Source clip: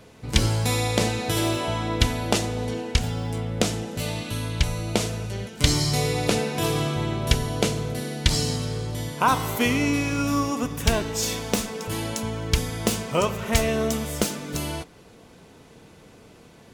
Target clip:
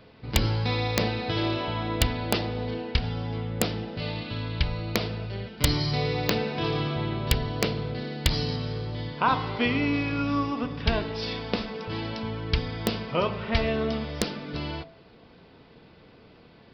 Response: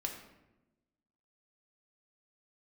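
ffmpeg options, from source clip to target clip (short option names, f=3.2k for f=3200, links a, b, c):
-af "aresample=11025,aresample=44100,bandreject=f=50.93:t=h:w=4,bandreject=f=101.86:t=h:w=4,bandreject=f=152.79:t=h:w=4,bandreject=f=203.72:t=h:w=4,bandreject=f=254.65:t=h:w=4,bandreject=f=305.58:t=h:w=4,bandreject=f=356.51:t=h:w=4,bandreject=f=407.44:t=h:w=4,bandreject=f=458.37:t=h:w=4,bandreject=f=509.3:t=h:w=4,bandreject=f=560.23:t=h:w=4,bandreject=f=611.16:t=h:w=4,bandreject=f=662.09:t=h:w=4,bandreject=f=713.02:t=h:w=4,bandreject=f=763.95:t=h:w=4,bandreject=f=814.88:t=h:w=4,bandreject=f=865.81:t=h:w=4,bandreject=f=916.74:t=h:w=4,bandreject=f=967.67:t=h:w=4,bandreject=f=1.0186k:t=h:w=4,bandreject=f=1.06953k:t=h:w=4,aeval=exprs='(mod(2.11*val(0)+1,2)-1)/2.11':c=same,volume=-2.5dB"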